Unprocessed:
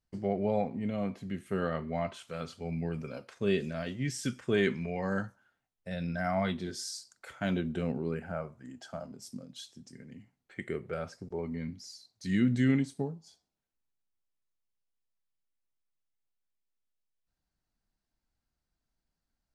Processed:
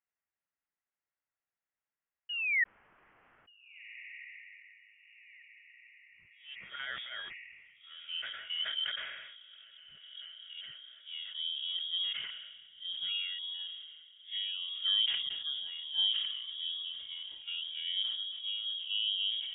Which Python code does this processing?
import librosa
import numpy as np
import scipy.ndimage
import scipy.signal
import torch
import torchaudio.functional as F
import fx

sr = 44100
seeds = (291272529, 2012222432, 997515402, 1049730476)

p1 = np.flip(x).copy()
p2 = scipy.signal.sosfilt(scipy.signal.butter(2, 110.0, 'highpass', fs=sr, output='sos'), p1)
p3 = fx.peak_eq(p2, sr, hz=250.0, db=-15.0, octaves=0.22)
p4 = fx.spec_paint(p3, sr, seeds[0], shape='rise', start_s=2.29, length_s=0.35, low_hz=580.0, high_hz=1700.0, level_db=-25.0)
p5 = np.sign(p4) * np.maximum(np.abs(p4) - 10.0 ** (-47.0 / 20.0), 0.0)
p6 = p4 + (p5 * librosa.db_to_amplitude(-11.5))
p7 = fx.filter_sweep_bandpass(p6, sr, from_hz=2200.0, to_hz=290.0, start_s=6.08, end_s=9.51, q=1.5)
p8 = fx.echo_diffused(p7, sr, ms=1602, feedback_pct=47, wet_db=-15.5)
p9 = fx.freq_invert(p8, sr, carrier_hz=3500)
y = fx.sustainer(p9, sr, db_per_s=39.0)